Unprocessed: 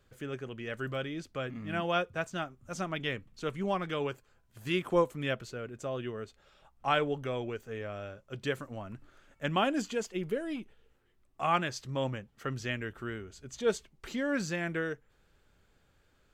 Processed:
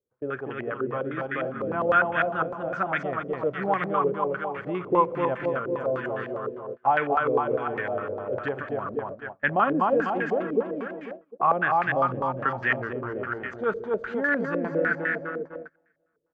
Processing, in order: low shelf 290 Hz -4.5 dB; on a send: feedback echo 0.248 s, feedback 55%, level -3 dB; on the sum: Schroeder reverb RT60 2.2 s, combs from 30 ms, DRR 15.5 dB; dynamic EQ 610 Hz, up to -4 dB, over -39 dBFS, Q 0.78; in parallel at -0.5 dB: limiter -25 dBFS, peak gain reduction 10 dB; on the sum: HPF 120 Hz 6 dB/oct; gate -40 dBFS, range -26 dB; stepped low-pass 9.9 Hz 460–1800 Hz

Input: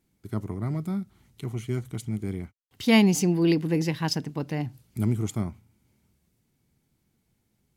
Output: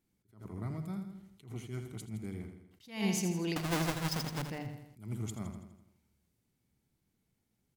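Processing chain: 3.56–4.42 half-waves squared off; notches 50/100/150 Hz; feedback echo 82 ms, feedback 52%, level -8.5 dB; dynamic EQ 300 Hz, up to -6 dB, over -32 dBFS, Q 0.75; attack slew limiter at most 150 dB/s; gain -7.5 dB

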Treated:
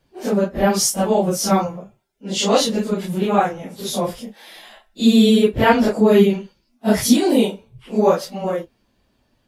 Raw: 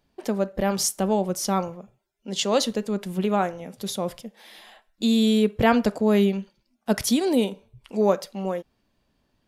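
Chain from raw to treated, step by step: phase scrambler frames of 0.1 s; gain +6 dB

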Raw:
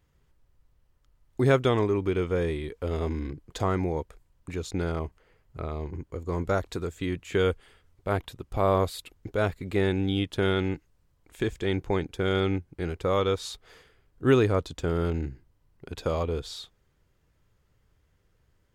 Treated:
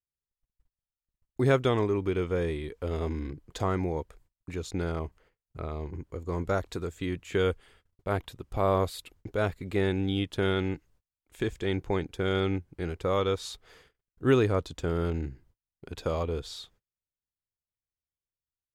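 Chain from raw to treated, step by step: gate -57 dBFS, range -33 dB; gain -2 dB

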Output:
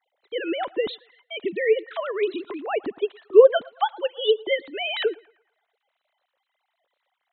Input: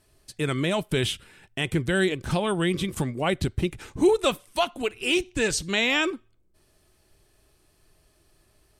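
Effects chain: sine-wave speech; narrowing echo 0.135 s, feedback 52%, band-pass 1000 Hz, level -21 dB; wide varispeed 1.2×; gain +2.5 dB

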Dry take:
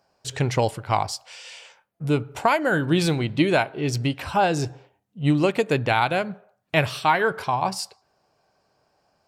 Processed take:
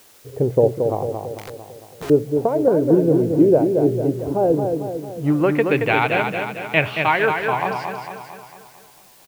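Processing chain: low-pass sweep 490 Hz -> 2500 Hz, 4.58–5.75; feedback echo 0.225 s, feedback 54%, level -5.5 dB; 1.38–2.1 wrapped overs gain 27 dB; in parallel at -10.5 dB: requantised 6-bit, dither triangular; on the sum: bell 390 Hz +5 dB 1.3 oct; gain -4 dB

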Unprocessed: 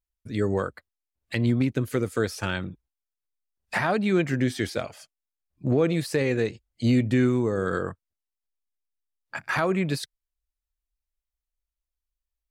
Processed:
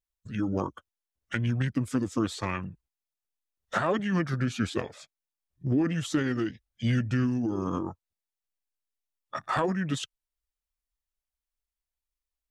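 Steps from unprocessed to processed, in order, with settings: harmonic-percussive split harmonic -5 dB; formant shift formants -5 st

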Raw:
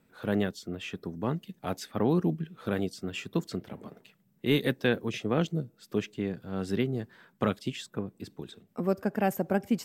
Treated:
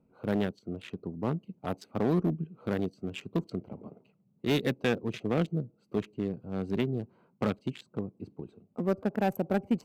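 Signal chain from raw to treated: Wiener smoothing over 25 samples; one-sided clip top -22 dBFS, bottom -18 dBFS

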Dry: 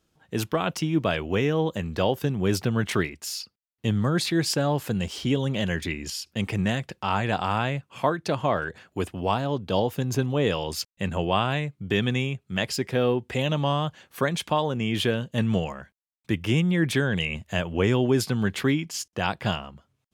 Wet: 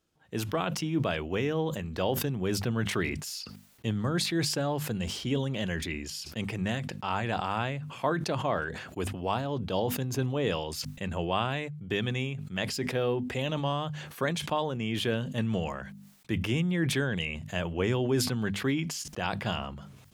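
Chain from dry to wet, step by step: notches 50/100/150/200/250 Hz; sustainer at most 49 dB/s; gain -5.5 dB

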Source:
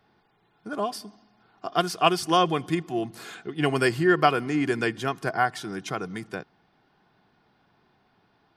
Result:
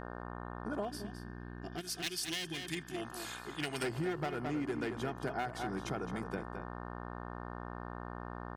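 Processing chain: one-sided fold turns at -19.5 dBFS; HPF 44 Hz; high shelf 7600 Hz +4.5 dB; notch 1100 Hz, Q 5.7; buzz 60 Hz, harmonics 30, -40 dBFS -1 dB/oct; tilt shelf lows +4 dB, about 1500 Hz, from 1.8 s lows -6 dB, from 3.82 s lows +4 dB; outdoor echo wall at 37 m, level -9 dB; compressor 6:1, threshold -26 dBFS, peak gain reduction 12 dB; 0.89–2.95 spectral gain 410–1500 Hz -11 dB; gain -7 dB

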